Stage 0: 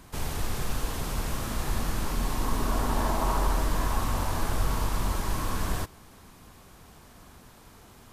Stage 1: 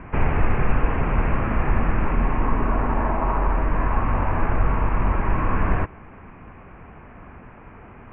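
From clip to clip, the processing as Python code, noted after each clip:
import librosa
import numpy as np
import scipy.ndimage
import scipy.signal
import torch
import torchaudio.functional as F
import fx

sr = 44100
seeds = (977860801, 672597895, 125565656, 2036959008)

y = scipy.signal.sosfilt(scipy.signal.butter(12, 2600.0, 'lowpass', fs=sr, output='sos'), x)
y = fx.rider(y, sr, range_db=10, speed_s=0.5)
y = y * 10.0 ** (7.5 / 20.0)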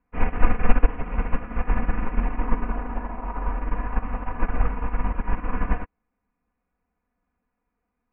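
y = x + 0.83 * np.pad(x, (int(4.1 * sr / 1000.0), 0))[:len(x)]
y = fx.upward_expand(y, sr, threshold_db=-34.0, expansion=2.5)
y = y * 10.0 ** (2.0 / 20.0)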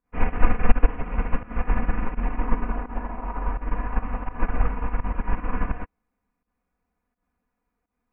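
y = fx.volume_shaper(x, sr, bpm=84, per_beat=1, depth_db=-17, release_ms=130.0, shape='fast start')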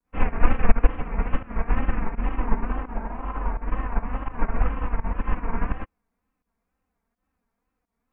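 y = fx.wow_flutter(x, sr, seeds[0], rate_hz=2.1, depth_cents=130.0)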